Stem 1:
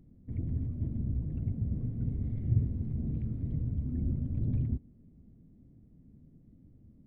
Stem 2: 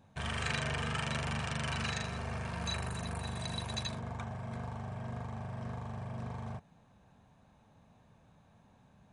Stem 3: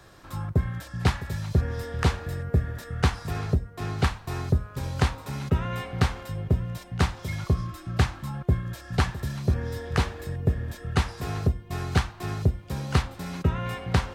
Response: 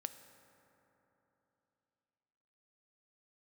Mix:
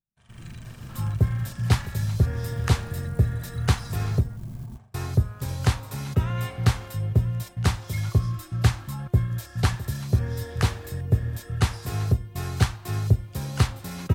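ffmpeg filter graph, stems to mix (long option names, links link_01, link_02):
-filter_complex "[0:a]equalizer=frequency=68:width=1.5:gain=3.5,aecho=1:1:5.4:0.98,acrusher=bits=7:mode=log:mix=0:aa=0.000001,volume=-10.5dB[link_01];[1:a]acompressor=threshold=-38dB:ratio=4,volume=-11.5dB[link_02];[2:a]adelay=650,volume=-2dB,asplit=3[link_03][link_04][link_05];[link_03]atrim=end=4.37,asetpts=PTS-STARTPTS,afade=type=out:start_time=4.366:duration=0.004:curve=hsin[link_06];[link_04]atrim=start=4.37:end=4.94,asetpts=PTS-STARTPTS,volume=0[link_07];[link_05]atrim=start=4.94,asetpts=PTS-STARTPTS,afade=type=in:duration=0.004:curve=hsin[link_08];[link_06][link_07][link_08]concat=n=3:v=0:a=1[link_09];[link_01][link_02][link_09]amix=inputs=3:normalize=0,agate=range=-33dB:threshold=-43dB:ratio=3:detection=peak,equalizer=frequency=110:width=3.4:gain=9.5,crystalizer=i=1.5:c=0"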